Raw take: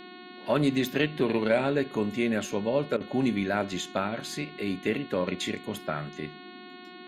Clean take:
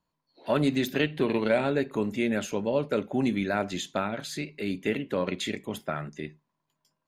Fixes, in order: de-hum 362.9 Hz, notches 12; interpolate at 2.97 s, 34 ms; noise print and reduce 30 dB

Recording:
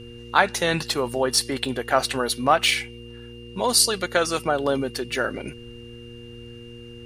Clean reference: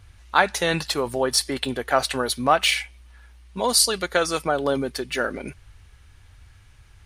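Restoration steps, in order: de-hum 118.6 Hz, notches 4; band-stop 2.8 kHz, Q 30

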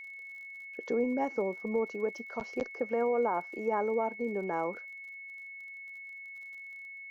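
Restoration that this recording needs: de-click; band-stop 2.2 kHz, Q 30

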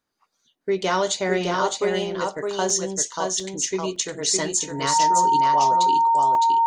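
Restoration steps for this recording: band-stop 920 Hz, Q 30; interpolate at 0.43/2.70/3.40/3.96/6.35 s, 2.1 ms; inverse comb 611 ms -4 dB

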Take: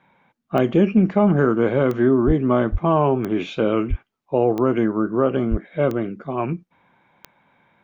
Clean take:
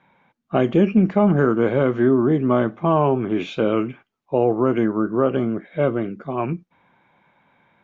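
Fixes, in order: de-click; de-plosive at 2.26/2.71/3.89/5.50 s

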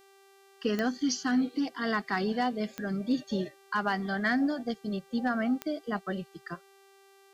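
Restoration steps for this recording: clip repair -19 dBFS; de-click; de-hum 391.9 Hz, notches 39

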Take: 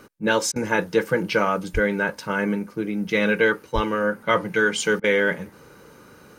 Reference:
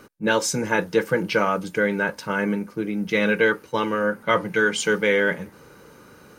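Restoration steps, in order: de-plosive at 1.73/3.74 s; interpolate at 0.52/5.00 s, 38 ms

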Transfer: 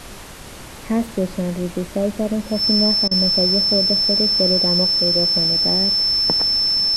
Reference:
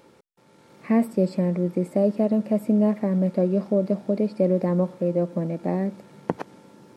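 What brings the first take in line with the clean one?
band-stop 5.3 kHz, Q 30; interpolate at 3.08 s, 31 ms; noise print and reduce 16 dB

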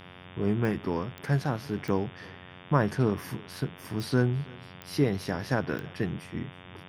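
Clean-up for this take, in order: de-click; de-hum 90.5 Hz, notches 40; noise print and reduce 25 dB; inverse comb 326 ms -24 dB

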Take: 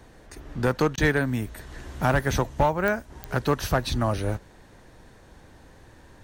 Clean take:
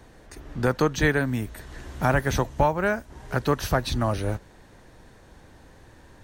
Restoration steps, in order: clip repair -13 dBFS; de-click; interpolate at 0.96 s, 15 ms

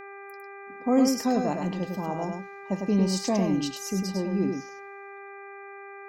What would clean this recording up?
de-hum 397.4 Hz, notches 6; inverse comb 102 ms -5 dB

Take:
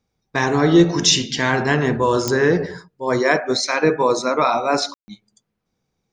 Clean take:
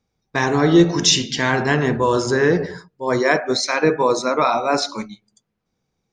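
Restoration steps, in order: de-click; room tone fill 4.94–5.08 s

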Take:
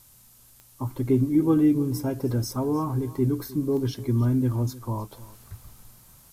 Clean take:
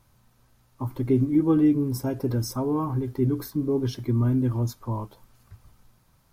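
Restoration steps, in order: de-click; noise print and reduce 7 dB; inverse comb 308 ms -18.5 dB; trim 0 dB, from 5.12 s -6 dB

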